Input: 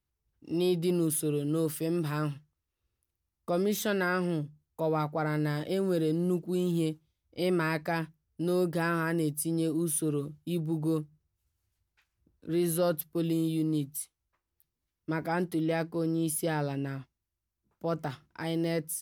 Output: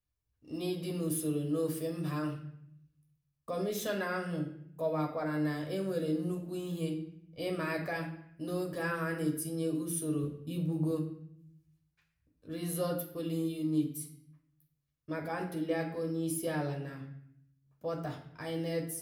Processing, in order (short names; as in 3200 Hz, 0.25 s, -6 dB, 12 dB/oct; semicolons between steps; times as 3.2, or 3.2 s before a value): 10.23–10.91 low shelf 320 Hz +6 dB; reverb RT60 0.70 s, pre-delay 8 ms, DRR 1.5 dB; gain -8 dB